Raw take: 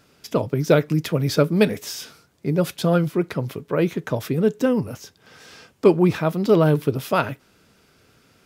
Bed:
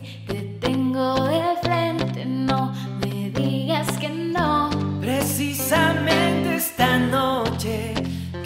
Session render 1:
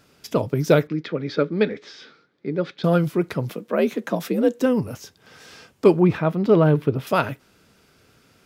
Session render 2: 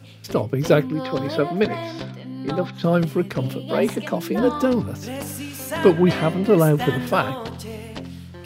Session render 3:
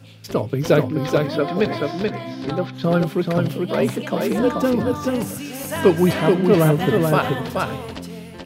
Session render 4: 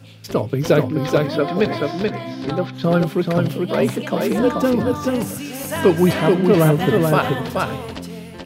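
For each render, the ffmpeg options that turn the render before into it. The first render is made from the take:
ffmpeg -i in.wav -filter_complex "[0:a]asettb=1/sr,asplit=3[link_01][link_02][link_03];[link_01]atrim=end=0.874[link_04];[link_02]atrim=start=0.87:end=2.84,asetpts=PTS-STARTPTS,afade=type=in:duration=0.004:curve=qsin,afade=type=out:start_time=1.966:duration=0.004:curve=qsin,highpass=250,equalizer=frequency=680:width_type=q:width=4:gain=-9,equalizer=frequency=990:width_type=q:width=4:gain=-8,equalizer=frequency=2800:width_type=q:width=4:gain=-9,lowpass=frequency=3800:width=0.5412,lowpass=frequency=3800:width=1.3066[link_05];[link_03]atrim=start=2.836[link_06];[link_04][link_05]acrossfade=duration=0.004:curve1=hsin:curve2=qsin[link_07];[link_07][link_06]acrossfade=duration=0.004:curve1=qsin:curve2=hsin,asettb=1/sr,asplit=3[link_08][link_09][link_10];[link_08]atrim=end=3.494[link_11];[link_09]atrim=start=3.49:end=4.62,asetpts=PTS-STARTPTS,afade=type=in:duration=0.004:curve=qsin,afade=type=out:start_time=1.126:duration=0.004:curve=qsin,afreqshift=58[link_12];[link_10]atrim=start=4.616[link_13];[link_11][link_12]acrossfade=duration=0.004:curve1=hsin:curve2=qsin[link_14];[link_14][link_13]acrossfade=duration=0.004:curve1=qsin:curve2=hsin,asettb=1/sr,asplit=3[link_15][link_16][link_17];[link_15]atrim=end=6.004[link_18];[link_16]atrim=start=6:end=7.07,asetpts=PTS-STARTPTS,afade=type=in:duration=0.004:curve=qsin,afade=type=out:start_time=1.066:duration=0.004:curve=qsin,bass=frequency=250:gain=1,treble=frequency=4000:gain=-14[link_19];[link_17]atrim=start=7.066[link_20];[link_18][link_19]acrossfade=duration=0.004:curve1=hsin:curve2=qsin[link_21];[link_21][link_20]acrossfade=duration=0.004:curve1=qsin:curve2=hsin" out.wav
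ffmpeg -i in.wav -i bed.wav -filter_complex "[1:a]volume=-8.5dB[link_01];[0:a][link_01]amix=inputs=2:normalize=0" out.wav
ffmpeg -i in.wav -af "aecho=1:1:431:0.668" out.wav
ffmpeg -i in.wav -af "volume=1.5dB,alimiter=limit=-3dB:level=0:latency=1" out.wav

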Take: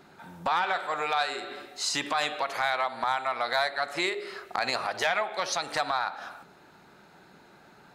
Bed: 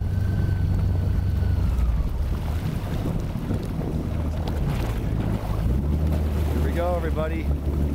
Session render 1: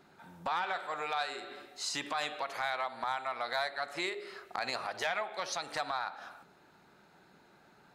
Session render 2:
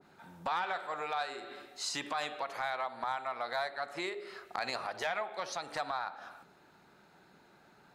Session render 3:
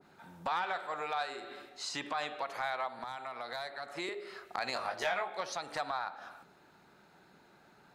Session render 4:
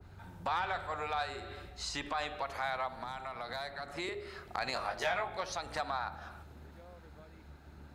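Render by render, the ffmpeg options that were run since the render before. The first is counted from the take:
ffmpeg -i in.wav -af "volume=-7dB" out.wav
ffmpeg -i in.wav -af "adynamicequalizer=threshold=0.00501:dfrequency=1600:dqfactor=0.7:tfrequency=1600:tqfactor=0.7:attack=5:release=100:ratio=0.375:range=2.5:mode=cutabove:tftype=highshelf" out.wav
ffmpeg -i in.wav -filter_complex "[0:a]asettb=1/sr,asplit=3[link_01][link_02][link_03];[link_01]atrim=end=1.694[link_04];[link_02]atrim=start=1.69:end=2.39,asetpts=PTS-STARTPTS,afade=type=in:duration=0.004:curve=qsin,afade=type=out:start_time=0.696:duration=0.004:curve=qsin,highshelf=frequency=8300:gain=-11.5[link_05];[link_03]atrim=start=2.386[link_06];[link_04][link_05]acrossfade=duration=0.004:curve1=hsin:curve2=qsin[link_07];[link_07][link_06]acrossfade=duration=0.004:curve1=qsin:curve2=hsin,asettb=1/sr,asplit=3[link_08][link_09][link_10];[link_08]atrim=end=2.994[link_11];[link_09]atrim=start=2.99:end=4.09,asetpts=PTS-STARTPTS,afade=type=in:duration=0.004:curve=qsin,afade=type=out:start_time=1.096:duration=0.004:curve=qsin,acrossover=split=380|3000[link_12][link_13][link_14];[link_13]acompressor=threshold=-38dB:ratio=6:attack=3.2:release=140:knee=2.83:detection=peak[link_15];[link_12][link_15][link_14]amix=inputs=3:normalize=0[link_16];[link_10]atrim=start=4.086[link_17];[link_11][link_16]acrossfade=duration=0.004:curve1=hsin:curve2=qsin[link_18];[link_18][link_17]acrossfade=duration=0.004:curve1=qsin:curve2=hsin,asettb=1/sr,asplit=3[link_19][link_20][link_21];[link_19]atrim=end=4.744[link_22];[link_20]atrim=start=4.74:end=5.41,asetpts=PTS-STARTPTS,afade=type=in:duration=0.004:curve=qsin,afade=type=out:start_time=0.666:duration=0.004:curve=qsin,asplit=2[link_23][link_24];[link_24]adelay=21,volume=-3.5dB[link_25];[link_23][link_25]amix=inputs=2:normalize=0,atrim=end_sample=29547[link_26];[link_21]atrim=start=5.406[link_27];[link_22][link_26]acrossfade=duration=0.004:curve1=hsin:curve2=qsin[link_28];[link_28][link_27]acrossfade=duration=0.004:curve1=qsin:curve2=hsin" out.wav
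ffmpeg -i in.wav -i bed.wav -filter_complex "[1:a]volume=-30dB[link_01];[0:a][link_01]amix=inputs=2:normalize=0" out.wav

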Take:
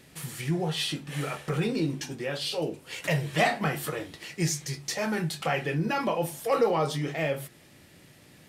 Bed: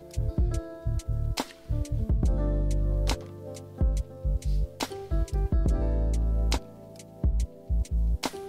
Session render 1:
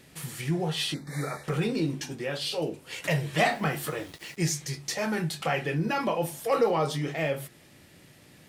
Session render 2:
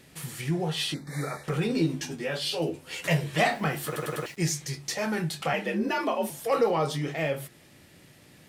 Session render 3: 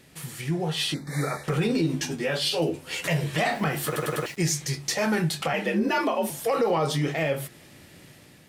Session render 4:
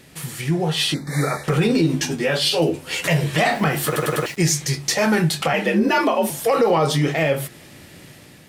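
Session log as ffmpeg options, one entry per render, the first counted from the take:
ffmpeg -i in.wav -filter_complex "[0:a]asettb=1/sr,asplit=3[link_01][link_02][link_03];[link_01]atrim=end=0.944[link_04];[link_02]atrim=start=0.94:end=1.44,asetpts=PTS-STARTPTS,afade=type=in:duration=0.004:curve=qsin,afade=type=out:start_time=0.496:duration=0.004:curve=qsin,asuperstop=centerf=2900:order=20:qfactor=2.3[link_05];[link_03]atrim=start=1.436[link_06];[link_04][link_05]acrossfade=duration=0.004:curve1=hsin:curve2=qsin[link_07];[link_07][link_06]acrossfade=duration=0.004:curve1=qsin:curve2=hsin,asettb=1/sr,asplit=3[link_08][link_09][link_10];[link_08]atrim=end=3.404[link_11];[link_09]atrim=start=3.4:end=4.37,asetpts=PTS-STARTPTS,afade=type=in:duration=0.004:curve=qsin,afade=type=out:start_time=0.966:duration=0.004:curve=qsin,aeval=exprs='val(0)*gte(abs(val(0)),0.00473)':channel_layout=same[link_12];[link_10]atrim=start=4.366[link_13];[link_11][link_12]acrossfade=duration=0.004:curve1=hsin:curve2=qsin[link_14];[link_14][link_13]acrossfade=duration=0.004:curve1=qsin:curve2=hsin" out.wav
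ffmpeg -i in.wav -filter_complex "[0:a]asettb=1/sr,asplit=3[link_01][link_02][link_03];[link_01]atrim=end=1.694[link_04];[link_02]atrim=start=1.69:end=3.24,asetpts=PTS-STARTPTS,afade=type=in:duration=0.004:curve=qsin,afade=type=out:start_time=1.546:duration=0.004:curve=qsin,asplit=2[link_05][link_06];[link_06]adelay=12,volume=-3.5dB[link_07];[link_05][link_07]amix=inputs=2:normalize=0,atrim=end_sample=68355[link_08];[link_03]atrim=start=3.236[link_09];[link_04][link_08]acrossfade=duration=0.004:curve1=hsin:curve2=qsin[link_10];[link_10][link_09]acrossfade=duration=0.004:curve1=qsin:curve2=hsin,asettb=1/sr,asplit=3[link_11][link_12][link_13];[link_11]atrim=end=5.534[link_14];[link_12]atrim=start=5.53:end=6.3,asetpts=PTS-STARTPTS,afade=type=in:duration=0.004:curve=qsin,afade=type=out:start_time=0.766:duration=0.004:curve=qsin,afreqshift=59[link_15];[link_13]atrim=start=6.296[link_16];[link_14][link_15]acrossfade=duration=0.004:curve1=hsin:curve2=qsin[link_17];[link_17][link_16]acrossfade=duration=0.004:curve1=qsin:curve2=hsin,asplit=5[link_18][link_19][link_20][link_21][link_22];[link_18]atrim=end=3.962[link_23];[link_19]atrim=start=3.858:end=3.962[link_24];[link_20]atrim=start=3.858:end=3.962[link_25];[link_21]atrim=start=3.858:end=3.962[link_26];[link_22]atrim=start=4.258[link_27];[link_23][link_24]acrossfade=duration=0.004:curve1=hsin:curve2=hsin[link_28];[link_28][link_25]acrossfade=duration=0.004:curve1=hsin:curve2=hsin[link_29];[link_29][link_26]acrossfade=duration=0.004:curve1=hsin:curve2=hsin[link_30];[link_30][link_27]acrossfade=duration=0.004:curve1=hsin:curve2=hsin" out.wav
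ffmpeg -i in.wav -af "dynaudnorm=framelen=580:gausssize=3:maxgain=5dB,alimiter=limit=-15.5dB:level=0:latency=1:release=98" out.wav
ffmpeg -i in.wav -af "volume=6.5dB" out.wav

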